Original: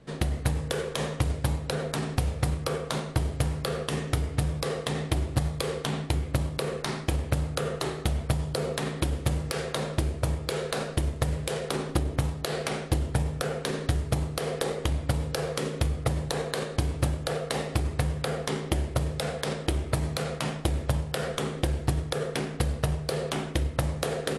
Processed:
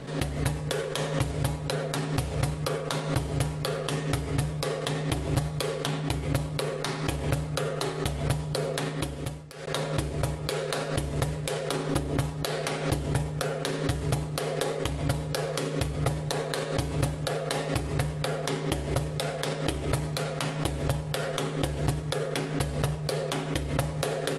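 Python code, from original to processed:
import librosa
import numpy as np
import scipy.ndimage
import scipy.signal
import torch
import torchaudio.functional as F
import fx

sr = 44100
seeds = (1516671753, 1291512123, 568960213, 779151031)

y = fx.edit(x, sr, fx.fade_out_span(start_s=8.85, length_s=0.82), tone=tone)
y = fx.low_shelf(y, sr, hz=160.0, db=-4.0)
y = y + 0.41 * np.pad(y, (int(7.2 * sr / 1000.0), 0))[:len(y)]
y = fx.pre_swell(y, sr, db_per_s=78.0)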